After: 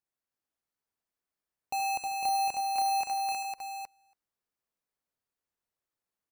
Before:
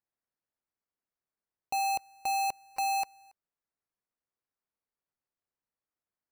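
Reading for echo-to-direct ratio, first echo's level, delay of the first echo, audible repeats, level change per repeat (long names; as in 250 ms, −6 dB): 0.5 dB, −10.0 dB, 78 ms, 5, repeats not evenly spaced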